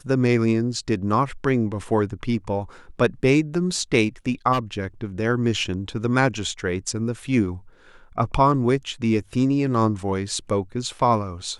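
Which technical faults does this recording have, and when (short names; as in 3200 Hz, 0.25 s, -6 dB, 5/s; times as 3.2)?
4.52–4.85 clipped -18.5 dBFS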